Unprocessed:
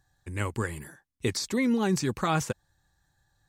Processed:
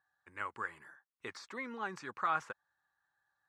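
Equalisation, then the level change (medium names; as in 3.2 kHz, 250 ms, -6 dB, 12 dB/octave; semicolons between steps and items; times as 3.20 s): band-pass filter 1.3 kHz, Q 2.2; -1.0 dB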